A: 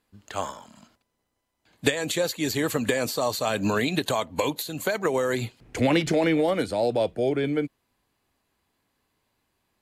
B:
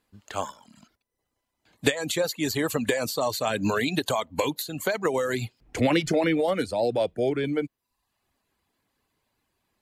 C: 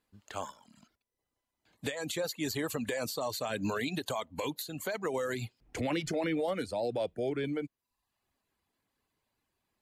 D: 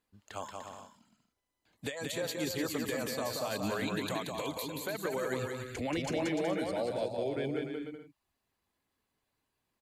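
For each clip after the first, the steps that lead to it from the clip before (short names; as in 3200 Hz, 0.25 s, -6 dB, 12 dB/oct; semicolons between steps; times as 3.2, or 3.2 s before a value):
reverb removal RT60 0.62 s
limiter -17.5 dBFS, peak gain reduction 8.5 dB; gain -6.5 dB
bouncing-ball echo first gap 0.18 s, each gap 0.65×, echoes 5; gain -2.5 dB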